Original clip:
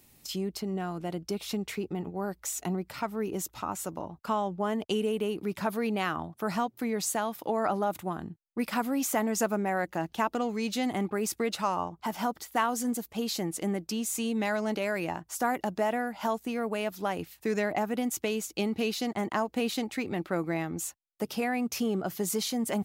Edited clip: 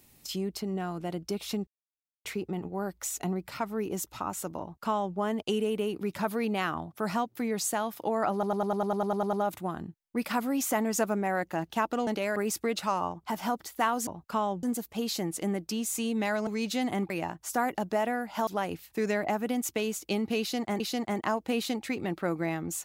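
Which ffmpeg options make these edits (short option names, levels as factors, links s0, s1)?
-filter_complex "[0:a]asplit=20[s0][s1][s2][s3][s4][s5][s6][s7][s8][s9][s10][s11][s12][s13][s14][s15][s16][s17][s18][s19];[s0]atrim=end=1.67,asetpts=PTS-STARTPTS,afade=t=out:st=1.666:d=0.004:c=hsin,apad=pad_dur=0.58[s20];[s1]atrim=start=1.67:end=7.852,asetpts=PTS-STARTPTS,afade=t=in:d=0.004:c=hsin[s21];[s2]atrim=start=7.748:end=7.852[s22];[s3]atrim=start=7.748:end=7.852[s23];[s4]atrim=start=7.748:end=7.852[s24];[s5]atrim=start=7.748:end=7.852[s25];[s6]atrim=start=7.748:end=7.852[s26];[s7]atrim=start=7.748:end=7.852[s27];[s8]atrim=start=7.748:end=7.852[s28];[s9]atrim=start=7.748:end=7.852[s29];[s10]atrim=start=7.748:end=7.852[s30];[s11]atrim=start=7.748:end=10.492[s31];[s12]atrim=start=14.668:end=14.962[s32];[s13]atrim=start=11.118:end=12.832[s33];[s14]atrim=start=4.018:end=4.582[s34];[s15]atrim=start=12.828:end=14.672[s35];[s16]atrim=start=10.488:end=11.122[s36];[s17]atrim=start=14.958:end=16.332[s37];[s18]atrim=start=16.948:end=19.282[s38];[s19]atrim=start=18.878[s39];[s20][s21]concat=n=2:v=0:a=1[s40];[s40][s22]acrossfade=d=0.004:c1=hsin:c2=hsin[s41];[s41][s23]acrossfade=d=0.004:c1=hsin:c2=hsin[s42];[s42][s24]acrossfade=d=0.004:c1=hsin:c2=hsin[s43];[s43][s25]acrossfade=d=0.004:c1=hsin:c2=hsin[s44];[s44][s26]acrossfade=d=0.004:c1=hsin:c2=hsin[s45];[s45][s27]acrossfade=d=0.004:c1=hsin:c2=hsin[s46];[s46][s28]acrossfade=d=0.004:c1=hsin:c2=hsin[s47];[s47][s29]acrossfade=d=0.004:c1=hsin:c2=hsin[s48];[s48][s30]acrossfade=d=0.004:c1=hsin:c2=hsin[s49];[s49][s31]acrossfade=d=0.004:c1=hsin:c2=hsin[s50];[s50][s32]acrossfade=d=0.004:c1=hsin:c2=hsin[s51];[s51][s33]acrossfade=d=0.004:c1=hsin:c2=hsin[s52];[s52][s34]acrossfade=d=0.004:c1=hsin:c2=hsin[s53];[s53][s35]acrossfade=d=0.004:c1=hsin:c2=hsin[s54];[s54][s36]acrossfade=d=0.004:c1=hsin:c2=hsin[s55];[s55][s37]acrossfade=d=0.004:c1=hsin:c2=hsin[s56];[s56][s38]acrossfade=d=0.004:c1=hsin:c2=hsin[s57];[s57][s39]acrossfade=d=0.004:c1=hsin:c2=hsin"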